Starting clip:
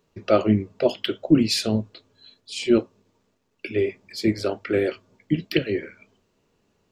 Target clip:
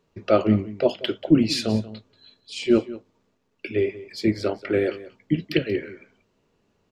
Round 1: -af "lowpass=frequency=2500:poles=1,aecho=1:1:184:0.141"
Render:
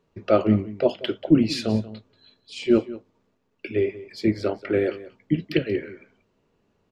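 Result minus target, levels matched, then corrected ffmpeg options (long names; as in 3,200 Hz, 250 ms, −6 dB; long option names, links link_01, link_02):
4,000 Hz band −3.0 dB
-af "lowpass=frequency=5200:poles=1,aecho=1:1:184:0.141"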